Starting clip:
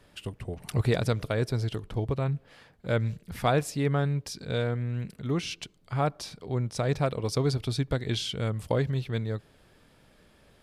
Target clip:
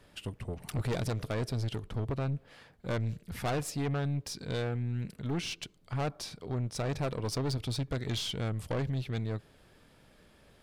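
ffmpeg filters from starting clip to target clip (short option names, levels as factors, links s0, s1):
-af "aeval=exprs='(tanh(25.1*val(0)+0.35)-tanh(0.35))/25.1':c=same"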